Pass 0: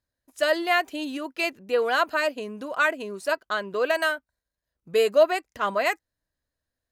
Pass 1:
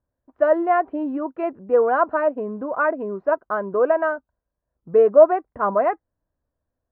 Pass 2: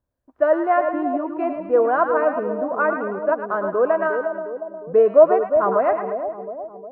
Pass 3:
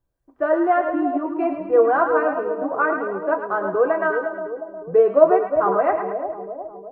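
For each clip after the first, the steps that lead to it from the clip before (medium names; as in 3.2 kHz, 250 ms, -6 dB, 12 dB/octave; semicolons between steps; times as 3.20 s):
low-pass 1.2 kHz 24 dB/octave; trim +6.5 dB
two-band feedback delay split 800 Hz, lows 358 ms, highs 108 ms, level -6.5 dB
reverberation, pre-delay 3 ms, DRR 3 dB; trim -1 dB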